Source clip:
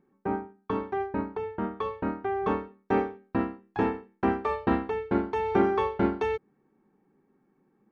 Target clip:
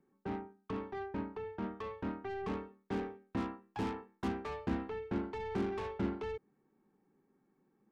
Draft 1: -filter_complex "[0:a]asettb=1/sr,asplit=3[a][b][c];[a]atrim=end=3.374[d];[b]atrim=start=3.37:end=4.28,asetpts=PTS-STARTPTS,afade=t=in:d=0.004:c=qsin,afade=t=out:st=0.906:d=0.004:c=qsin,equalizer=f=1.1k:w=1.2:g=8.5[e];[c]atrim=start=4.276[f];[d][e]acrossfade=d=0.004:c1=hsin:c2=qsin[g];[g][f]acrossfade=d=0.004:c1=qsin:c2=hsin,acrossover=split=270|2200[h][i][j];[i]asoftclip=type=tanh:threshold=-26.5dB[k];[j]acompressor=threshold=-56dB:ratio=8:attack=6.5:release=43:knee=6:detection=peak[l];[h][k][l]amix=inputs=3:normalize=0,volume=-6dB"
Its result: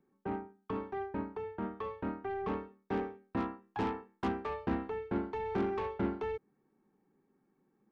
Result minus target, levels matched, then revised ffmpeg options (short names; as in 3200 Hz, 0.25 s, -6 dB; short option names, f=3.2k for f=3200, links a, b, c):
soft clip: distortion -4 dB
-filter_complex "[0:a]asettb=1/sr,asplit=3[a][b][c];[a]atrim=end=3.374[d];[b]atrim=start=3.37:end=4.28,asetpts=PTS-STARTPTS,afade=t=in:d=0.004:c=qsin,afade=t=out:st=0.906:d=0.004:c=qsin,equalizer=f=1.1k:w=1.2:g=8.5[e];[c]atrim=start=4.276[f];[d][e]acrossfade=d=0.004:c1=hsin:c2=qsin[g];[g][f]acrossfade=d=0.004:c1=qsin:c2=hsin,acrossover=split=270|2200[h][i][j];[i]asoftclip=type=tanh:threshold=-33.5dB[k];[j]acompressor=threshold=-56dB:ratio=8:attack=6.5:release=43:knee=6:detection=peak[l];[h][k][l]amix=inputs=3:normalize=0,volume=-6dB"